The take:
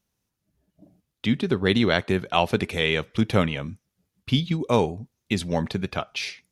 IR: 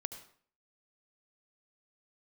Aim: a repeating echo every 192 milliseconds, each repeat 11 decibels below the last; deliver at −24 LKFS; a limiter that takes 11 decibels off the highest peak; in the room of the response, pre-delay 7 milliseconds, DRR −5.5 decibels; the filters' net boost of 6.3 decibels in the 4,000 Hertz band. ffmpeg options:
-filter_complex "[0:a]equalizer=frequency=4000:width_type=o:gain=8,alimiter=limit=-11.5dB:level=0:latency=1,aecho=1:1:192|384|576:0.282|0.0789|0.0221,asplit=2[link_01][link_02];[1:a]atrim=start_sample=2205,adelay=7[link_03];[link_02][link_03]afir=irnorm=-1:irlink=0,volume=7dB[link_04];[link_01][link_04]amix=inputs=2:normalize=0,volume=-5dB"

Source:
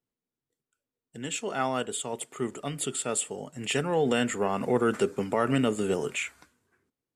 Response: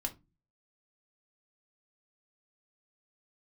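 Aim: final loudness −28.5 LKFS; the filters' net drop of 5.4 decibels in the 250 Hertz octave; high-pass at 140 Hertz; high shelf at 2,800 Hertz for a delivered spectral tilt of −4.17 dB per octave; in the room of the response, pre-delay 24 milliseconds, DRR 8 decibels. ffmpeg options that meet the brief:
-filter_complex "[0:a]highpass=140,equalizer=frequency=250:width_type=o:gain=-6,highshelf=frequency=2800:gain=-7,asplit=2[link_01][link_02];[1:a]atrim=start_sample=2205,adelay=24[link_03];[link_02][link_03]afir=irnorm=-1:irlink=0,volume=-9dB[link_04];[link_01][link_04]amix=inputs=2:normalize=0,volume=3dB"

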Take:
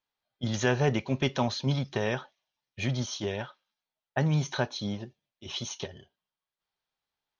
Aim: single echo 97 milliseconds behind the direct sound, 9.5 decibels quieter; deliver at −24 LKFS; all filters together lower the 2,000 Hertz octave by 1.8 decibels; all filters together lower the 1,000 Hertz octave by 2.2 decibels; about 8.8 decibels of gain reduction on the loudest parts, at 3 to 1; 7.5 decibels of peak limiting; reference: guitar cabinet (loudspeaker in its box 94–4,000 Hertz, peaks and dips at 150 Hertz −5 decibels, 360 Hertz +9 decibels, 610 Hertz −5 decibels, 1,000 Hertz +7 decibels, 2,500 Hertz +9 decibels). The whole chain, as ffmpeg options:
ffmpeg -i in.wav -af "equalizer=frequency=1000:width_type=o:gain=-5,equalizer=frequency=2000:width_type=o:gain=-6,acompressor=threshold=-34dB:ratio=3,alimiter=level_in=3dB:limit=-24dB:level=0:latency=1,volume=-3dB,highpass=94,equalizer=frequency=150:width_type=q:width=4:gain=-5,equalizer=frequency=360:width_type=q:width=4:gain=9,equalizer=frequency=610:width_type=q:width=4:gain=-5,equalizer=frequency=1000:width_type=q:width=4:gain=7,equalizer=frequency=2500:width_type=q:width=4:gain=9,lowpass=frequency=4000:width=0.5412,lowpass=frequency=4000:width=1.3066,aecho=1:1:97:0.335,volume=15dB" out.wav

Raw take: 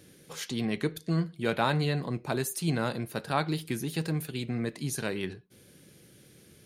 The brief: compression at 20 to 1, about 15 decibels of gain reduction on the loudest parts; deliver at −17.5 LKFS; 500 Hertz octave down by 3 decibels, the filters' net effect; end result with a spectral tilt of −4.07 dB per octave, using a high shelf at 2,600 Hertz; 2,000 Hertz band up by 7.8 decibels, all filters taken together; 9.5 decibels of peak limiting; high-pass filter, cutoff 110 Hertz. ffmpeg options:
ffmpeg -i in.wav -af "highpass=110,equalizer=frequency=500:width_type=o:gain=-4.5,equalizer=frequency=2000:width_type=o:gain=9,highshelf=frequency=2600:gain=4,acompressor=threshold=-34dB:ratio=20,volume=23dB,alimiter=limit=-5dB:level=0:latency=1" out.wav

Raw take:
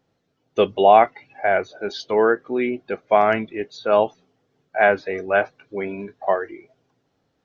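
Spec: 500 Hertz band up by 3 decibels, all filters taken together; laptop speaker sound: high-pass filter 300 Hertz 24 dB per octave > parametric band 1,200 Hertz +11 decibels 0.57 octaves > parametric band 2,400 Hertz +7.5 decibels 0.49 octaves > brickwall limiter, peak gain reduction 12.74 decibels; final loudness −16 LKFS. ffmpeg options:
ffmpeg -i in.wav -af "highpass=frequency=300:width=0.5412,highpass=frequency=300:width=1.3066,equalizer=frequency=500:width_type=o:gain=3,equalizer=frequency=1200:width_type=o:width=0.57:gain=11,equalizer=frequency=2400:width_type=o:width=0.49:gain=7.5,volume=7dB,alimiter=limit=-2.5dB:level=0:latency=1" out.wav

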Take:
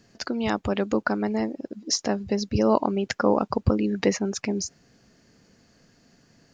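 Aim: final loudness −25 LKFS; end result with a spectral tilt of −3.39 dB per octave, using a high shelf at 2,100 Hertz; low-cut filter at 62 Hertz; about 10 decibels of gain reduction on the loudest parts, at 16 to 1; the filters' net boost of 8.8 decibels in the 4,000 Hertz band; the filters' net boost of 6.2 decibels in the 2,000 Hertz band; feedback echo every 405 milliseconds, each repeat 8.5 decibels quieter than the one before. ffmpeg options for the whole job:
ffmpeg -i in.wav -af "highpass=62,equalizer=frequency=2000:width_type=o:gain=3.5,highshelf=frequency=2100:gain=7.5,equalizer=frequency=4000:width_type=o:gain=3,acompressor=threshold=-22dB:ratio=16,aecho=1:1:405|810|1215|1620:0.376|0.143|0.0543|0.0206,volume=3dB" out.wav

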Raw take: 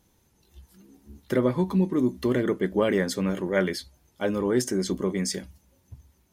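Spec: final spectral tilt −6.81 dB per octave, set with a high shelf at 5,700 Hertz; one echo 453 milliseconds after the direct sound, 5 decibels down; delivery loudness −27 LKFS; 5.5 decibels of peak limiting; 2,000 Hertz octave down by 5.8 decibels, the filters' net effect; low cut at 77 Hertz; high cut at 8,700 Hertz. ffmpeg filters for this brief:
ffmpeg -i in.wav -af "highpass=77,lowpass=8700,equalizer=frequency=2000:width_type=o:gain=-6.5,highshelf=frequency=5700:gain=-8.5,alimiter=limit=-16.5dB:level=0:latency=1,aecho=1:1:453:0.562,volume=0.5dB" out.wav

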